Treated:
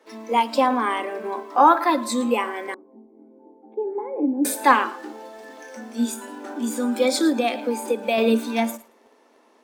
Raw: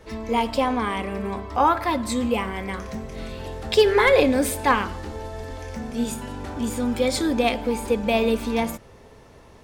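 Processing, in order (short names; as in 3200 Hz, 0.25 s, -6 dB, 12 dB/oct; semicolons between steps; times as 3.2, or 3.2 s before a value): rippled Chebyshev high-pass 220 Hz, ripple 3 dB; thinning echo 0.111 s, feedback 25%, high-pass 410 Hz, level -16 dB; in parallel at -12 dB: bit-crush 7-bit; on the sum: spectral noise reduction 8 dB; 2.74–4.45 vocal tract filter u; 7.29–8.18 compressor, threshold -21 dBFS, peak gain reduction 6 dB; gain +3 dB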